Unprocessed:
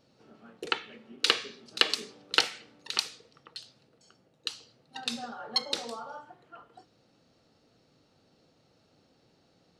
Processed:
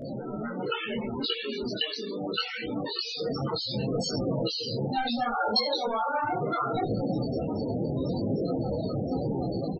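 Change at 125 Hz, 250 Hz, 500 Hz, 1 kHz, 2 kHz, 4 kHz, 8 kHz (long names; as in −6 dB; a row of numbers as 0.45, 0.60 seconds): +29.0, +18.0, +13.5, +10.0, −1.0, −0.5, −5.5 decibels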